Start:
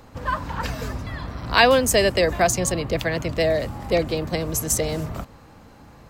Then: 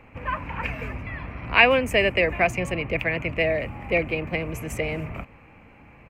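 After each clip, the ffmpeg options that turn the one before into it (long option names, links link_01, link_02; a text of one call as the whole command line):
ffmpeg -i in.wav -af "firequalizer=gain_entry='entry(1600,0);entry(2400,15);entry(3600,-14);entry(5200,-17);entry(9100,-14)':delay=0.05:min_phase=1,volume=-3.5dB" out.wav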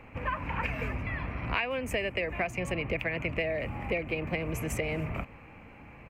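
ffmpeg -i in.wav -af "acompressor=threshold=-27dB:ratio=16" out.wav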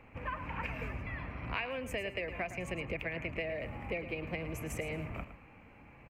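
ffmpeg -i in.wav -af "aecho=1:1:111|222|333:0.251|0.0502|0.01,volume=-6.5dB" out.wav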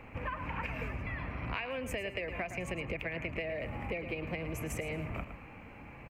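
ffmpeg -i in.wav -af "acompressor=threshold=-43dB:ratio=2.5,volume=6.5dB" out.wav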